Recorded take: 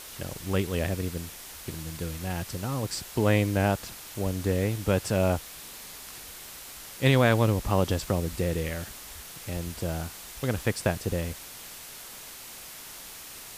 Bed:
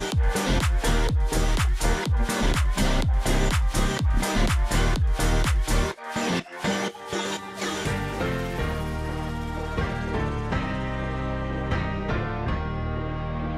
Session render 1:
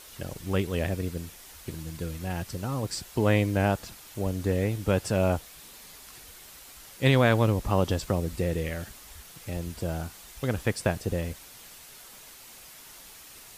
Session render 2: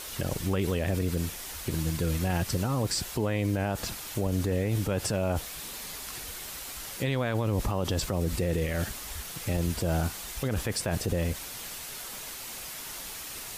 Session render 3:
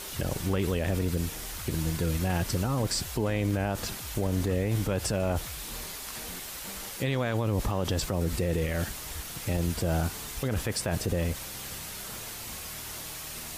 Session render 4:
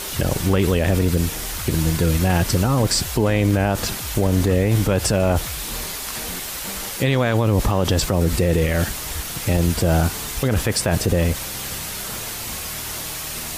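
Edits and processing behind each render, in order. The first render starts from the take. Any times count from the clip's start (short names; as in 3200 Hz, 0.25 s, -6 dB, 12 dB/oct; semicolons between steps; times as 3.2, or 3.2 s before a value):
denoiser 6 dB, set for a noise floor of -44 dBFS
in parallel at -0.5 dB: negative-ratio compressor -32 dBFS; on the sum: limiter -19.5 dBFS, peak gain reduction 11 dB
add bed -21 dB
gain +10 dB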